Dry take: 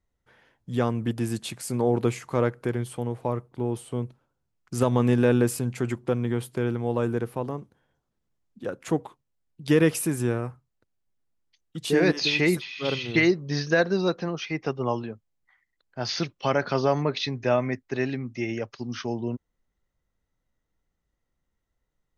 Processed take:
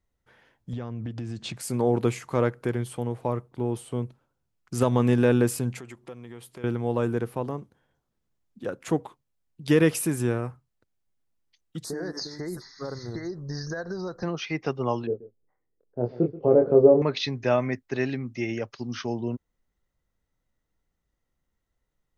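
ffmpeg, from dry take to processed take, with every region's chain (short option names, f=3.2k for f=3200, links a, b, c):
-filter_complex "[0:a]asettb=1/sr,asplit=3[a][b][c];[a]atrim=end=0.734[d];[b]atrim=start=0.73:end=1.57,asetpts=PTS-STARTPTS,afade=t=in:d=0.004:c=qsin,afade=t=out:st=0.836:d=0.004:c=qsin,lowpass=f=6.4k:w=0.5412,lowpass=f=6.4k:w=1.3066,lowshelf=f=190:g=9,acompressor=threshold=-29dB:ratio=10:attack=3.2:release=140:knee=1:detection=peak[e];[c]atrim=start=1.566[f];[d][e]acrossfade=d=0.004:c1=hsin:c2=qsin[g];[g][f]acrossfade=d=0.004:c1=qsin:c2=hsin,asettb=1/sr,asplit=3[h][i][j];[h]atrim=end=5.794[k];[i]atrim=start=5.79:end=6.64,asetpts=PTS-STARTPTS,afade=t=in:d=0.004:c=qsin,afade=t=out:st=0.846:d=0.004:c=qsin,equalizer=f=120:w=0.33:g=-8,bandreject=f=1.5k:w=11,acompressor=threshold=-46dB:ratio=2:attack=3.2:release=140:knee=1:detection=peak[l];[j]atrim=start=6.636[m];[k][l]acrossfade=d=0.004:c1=hsin:c2=qsin[n];[n][m]acrossfade=d=0.004:c1=qsin:c2=hsin,asettb=1/sr,asplit=3[o][p][q];[o]atrim=end=11.844[r];[p]atrim=start=11.84:end=14.23,asetpts=PTS-STARTPTS,afade=t=in:d=0.004:c=qsin,afade=t=out:st=2.386:d=0.004:c=qsin,asubboost=boost=11:cutoff=77,acompressor=threshold=-28dB:ratio=12:attack=3.2:release=140:knee=1:detection=peak,asuperstop=centerf=2800:order=8:qfactor=1.1[s];[q]atrim=start=14.226[t];[r][s]acrossfade=d=0.004:c1=hsin:c2=qsin[u];[u][t]acrossfade=d=0.004:c1=qsin:c2=hsin,asettb=1/sr,asplit=3[v][w][x];[v]atrim=end=15.074[y];[w]atrim=start=15.07:end=17.02,asetpts=PTS-STARTPTS,afade=t=in:d=0.004:c=qsin,afade=t=out:st=1.946:d=0.004:c=qsin,lowpass=f=450:t=q:w=4.2,asplit=2[z][aa];[aa]adelay=25,volume=-4.5dB[ab];[z][ab]amix=inputs=2:normalize=0,atrim=end_sample=85995,aecho=1:1:131:0.133,atrim=end_sample=85995[ac];[x]atrim=start=17.016[ad];[y][ac]acrossfade=d=0.004:c1=hsin:c2=qsin[ae];[ae][ad]acrossfade=d=0.004:c1=qsin:c2=hsin"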